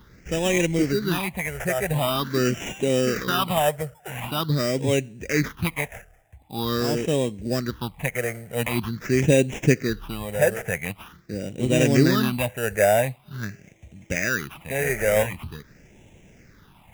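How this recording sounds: aliases and images of a low sample rate 4300 Hz, jitter 0%; phasing stages 6, 0.45 Hz, lowest notch 280–1300 Hz

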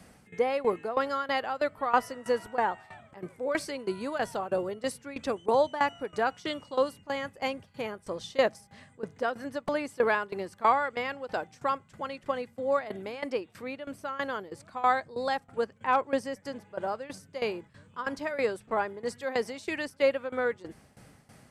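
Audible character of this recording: tremolo saw down 3.1 Hz, depth 85%

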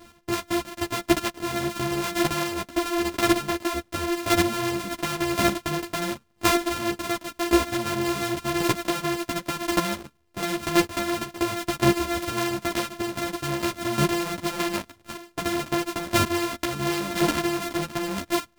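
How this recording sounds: a buzz of ramps at a fixed pitch in blocks of 128 samples; chopped level 0.93 Hz, depth 65%, duty 10%; a shimmering, thickened sound

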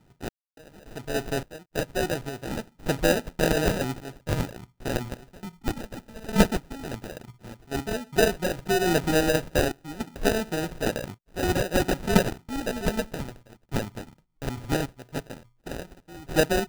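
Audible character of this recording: a buzz of ramps at a fixed pitch in blocks of 8 samples; phasing stages 4, 0.13 Hz, lowest notch 510–1700 Hz; random-step tremolo, depth 100%; aliases and images of a low sample rate 1100 Hz, jitter 0%

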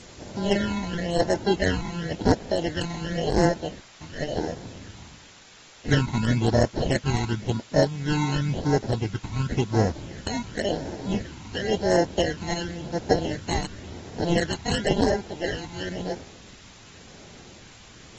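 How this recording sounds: aliases and images of a low sample rate 1200 Hz, jitter 0%; phasing stages 12, 0.94 Hz, lowest notch 520–3200 Hz; a quantiser's noise floor 8-bit, dither triangular; AAC

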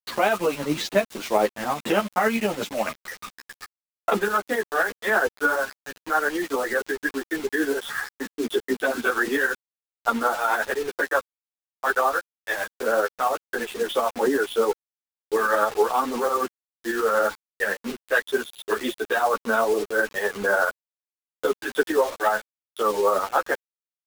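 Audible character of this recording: a quantiser's noise floor 6-bit, dither none; tremolo saw up 11 Hz, depth 50%; a shimmering, thickened sound

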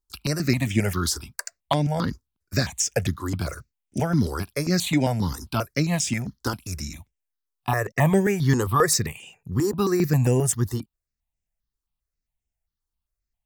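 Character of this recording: notches that jump at a steady rate 7.5 Hz 640–4200 Hz

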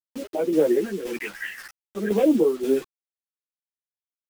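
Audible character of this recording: phasing stages 2, 0.51 Hz, lowest notch 420–1600 Hz; a quantiser's noise floor 8-bit, dither none; tremolo saw down 1.9 Hz, depth 60%; a shimmering, thickened sound

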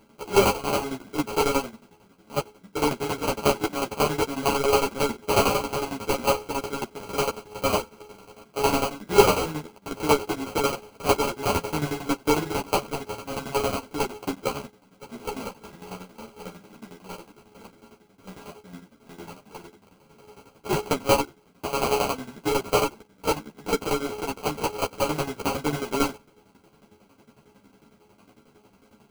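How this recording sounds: a buzz of ramps at a fixed pitch in blocks of 32 samples; tremolo saw down 11 Hz, depth 85%; aliases and images of a low sample rate 1800 Hz, jitter 0%; a shimmering, thickened sound

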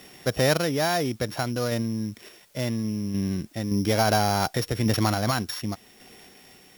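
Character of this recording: a buzz of ramps at a fixed pitch in blocks of 8 samples; random-step tremolo; a quantiser's noise floor 10-bit, dither triangular

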